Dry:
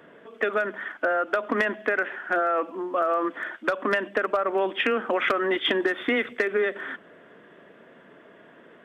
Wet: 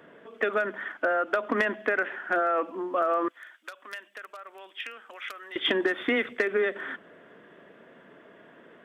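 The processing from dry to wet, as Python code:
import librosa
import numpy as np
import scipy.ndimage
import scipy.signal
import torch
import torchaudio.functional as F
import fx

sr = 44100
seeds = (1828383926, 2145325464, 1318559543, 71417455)

y = fx.differentiator(x, sr, at=(3.28, 5.56))
y = y * librosa.db_to_amplitude(-1.5)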